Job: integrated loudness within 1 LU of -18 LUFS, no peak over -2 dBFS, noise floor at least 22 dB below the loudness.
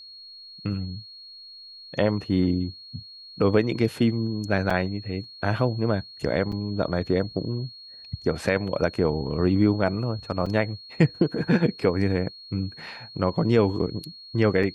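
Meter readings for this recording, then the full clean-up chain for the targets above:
dropouts 4; longest dropout 4.7 ms; steady tone 4300 Hz; tone level -42 dBFS; loudness -25.5 LUFS; peak -7.0 dBFS; loudness target -18.0 LUFS
-> interpolate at 4.7/6.52/10.46/14.63, 4.7 ms; notch 4300 Hz, Q 30; gain +7.5 dB; limiter -2 dBFS

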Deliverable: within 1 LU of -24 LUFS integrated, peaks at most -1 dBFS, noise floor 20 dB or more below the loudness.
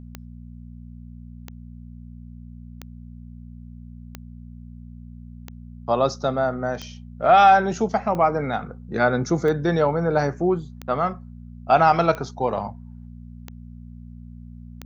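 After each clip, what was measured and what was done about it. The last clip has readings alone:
clicks 12; hum 60 Hz; harmonics up to 240 Hz; hum level -37 dBFS; loudness -21.0 LUFS; peak -5.0 dBFS; loudness target -24.0 LUFS
-> de-click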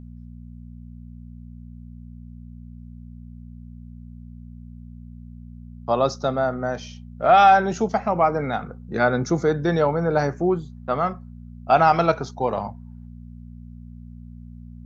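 clicks 0; hum 60 Hz; harmonics up to 240 Hz; hum level -37 dBFS
-> de-hum 60 Hz, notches 4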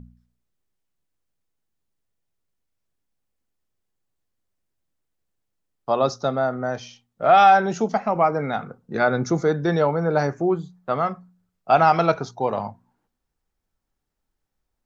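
hum none; loudness -21.0 LUFS; peak -5.0 dBFS; loudness target -24.0 LUFS
-> gain -3 dB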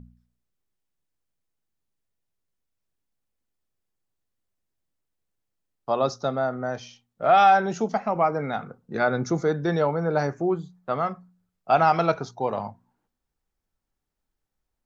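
loudness -24.0 LUFS; peak -8.0 dBFS; noise floor -82 dBFS

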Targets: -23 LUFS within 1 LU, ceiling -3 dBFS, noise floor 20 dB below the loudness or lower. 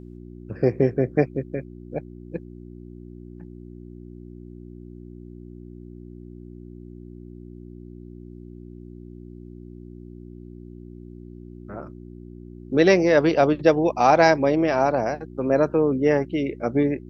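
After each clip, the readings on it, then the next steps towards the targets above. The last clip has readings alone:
hum 60 Hz; harmonics up to 360 Hz; hum level -38 dBFS; loudness -21.0 LUFS; peak -3.0 dBFS; loudness target -23.0 LUFS
-> de-hum 60 Hz, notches 6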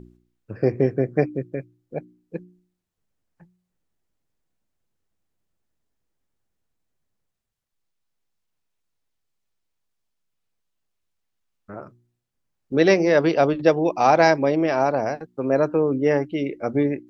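hum none; loudness -20.5 LUFS; peak -3.0 dBFS; loudness target -23.0 LUFS
-> gain -2.5 dB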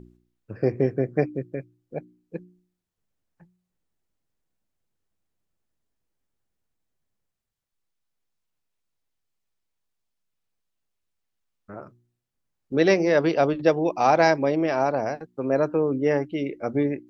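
loudness -23.0 LUFS; peak -5.5 dBFS; noise floor -81 dBFS

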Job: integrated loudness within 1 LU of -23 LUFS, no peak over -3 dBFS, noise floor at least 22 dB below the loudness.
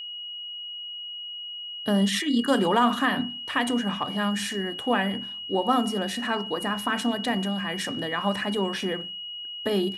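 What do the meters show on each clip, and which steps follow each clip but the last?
steady tone 2900 Hz; tone level -34 dBFS; loudness -26.5 LUFS; peak -10.0 dBFS; loudness target -23.0 LUFS
-> notch 2900 Hz, Q 30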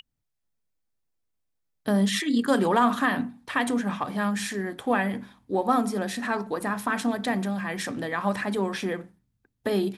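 steady tone none; loudness -26.5 LUFS; peak -10.0 dBFS; loudness target -23.0 LUFS
-> gain +3.5 dB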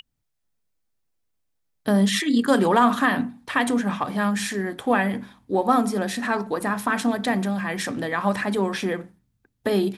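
loudness -23.0 LUFS; peak -6.5 dBFS; noise floor -75 dBFS

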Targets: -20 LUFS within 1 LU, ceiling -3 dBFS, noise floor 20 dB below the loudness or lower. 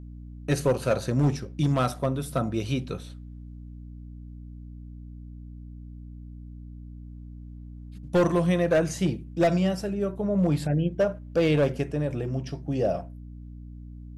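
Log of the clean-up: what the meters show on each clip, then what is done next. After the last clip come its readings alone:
clipped 0.7%; flat tops at -16.0 dBFS; hum 60 Hz; harmonics up to 300 Hz; hum level -39 dBFS; loudness -26.0 LUFS; peak -16.0 dBFS; loudness target -20.0 LUFS
-> clip repair -16 dBFS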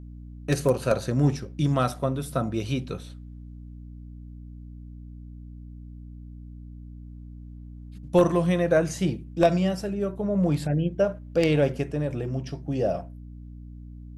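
clipped 0.0%; hum 60 Hz; harmonics up to 300 Hz; hum level -39 dBFS
-> de-hum 60 Hz, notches 5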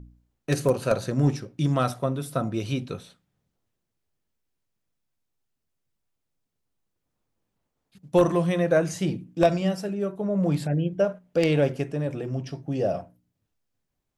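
hum none; loudness -25.5 LUFS; peak -7.5 dBFS; loudness target -20.0 LUFS
-> gain +5.5 dB; limiter -3 dBFS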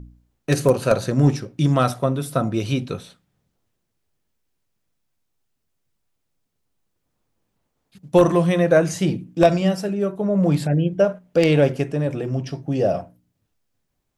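loudness -20.0 LUFS; peak -3.0 dBFS; noise floor -75 dBFS

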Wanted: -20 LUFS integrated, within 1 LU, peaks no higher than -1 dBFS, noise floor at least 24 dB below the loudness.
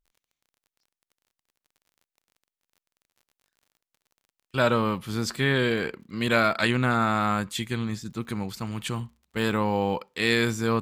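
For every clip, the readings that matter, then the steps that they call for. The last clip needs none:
ticks 38/s; loudness -26.0 LUFS; peak -7.5 dBFS; loudness target -20.0 LUFS
-> de-click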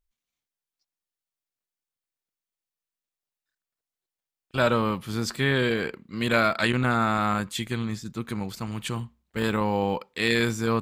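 ticks 0.37/s; loudness -26.0 LUFS; peak -7.5 dBFS; loudness target -20.0 LUFS
-> gain +6 dB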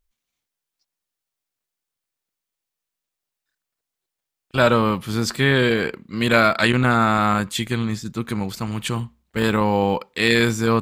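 loudness -20.0 LUFS; peak -1.5 dBFS; noise floor -85 dBFS

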